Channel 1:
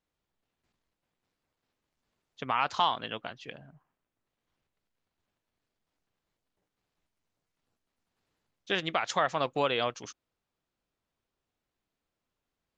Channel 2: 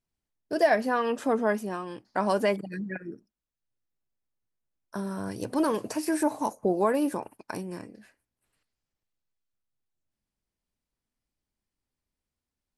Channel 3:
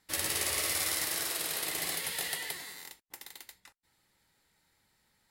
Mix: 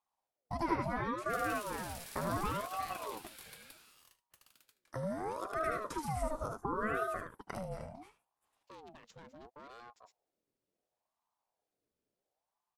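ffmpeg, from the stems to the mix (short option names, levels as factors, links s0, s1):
-filter_complex "[0:a]aeval=exprs='sgn(val(0))*max(abs(val(0))-0.00119,0)':c=same,asubboost=boost=11:cutoff=250,asoftclip=type=tanh:threshold=0.0501,volume=0.473[s0];[1:a]lowshelf=f=420:g=7,bandreject=f=390:w=12,volume=0.794,asplit=3[s1][s2][s3];[s2]volume=0.224[s4];[2:a]adelay=1200,volume=0.178,asplit=2[s5][s6];[s6]volume=0.15[s7];[s3]apad=whole_len=563342[s8];[s0][s8]sidechaingate=range=0.2:threshold=0.00282:ratio=16:detection=peak[s9];[s9][s1]amix=inputs=2:normalize=0,highpass=58,acompressor=threshold=0.0112:ratio=2,volume=1[s10];[s4][s7]amix=inputs=2:normalize=0,aecho=0:1:76:1[s11];[s5][s10][s11]amix=inputs=3:normalize=0,aeval=exprs='val(0)*sin(2*PI*640*n/s+640*0.5/0.71*sin(2*PI*0.71*n/s))':c=same"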